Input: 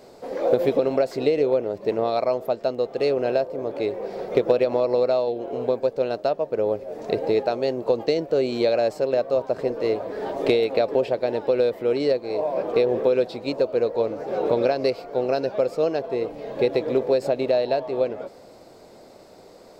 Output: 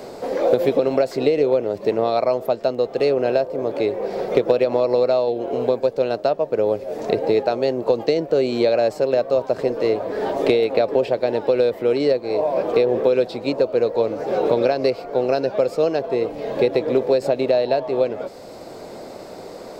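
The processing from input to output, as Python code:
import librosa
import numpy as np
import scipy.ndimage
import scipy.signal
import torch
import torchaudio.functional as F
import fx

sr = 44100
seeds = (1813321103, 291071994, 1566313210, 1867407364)

y = fx.band_squash(x, sr, depth_pct=40)
y = y * 10.0 ** (3.0 / 20.0)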